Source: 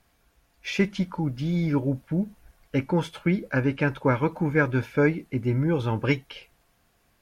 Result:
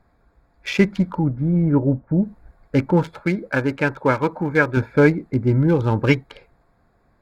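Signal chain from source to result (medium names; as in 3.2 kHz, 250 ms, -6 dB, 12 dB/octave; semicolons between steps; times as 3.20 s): local Wiener filter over 15 samples; 1.23–2.21 s: low-pass 1.7 kHz -> 1.1 kHz 12 dB/octave; 3.20–4.77 s: bass shelf 270 Hz -9 dB; trim +7 dB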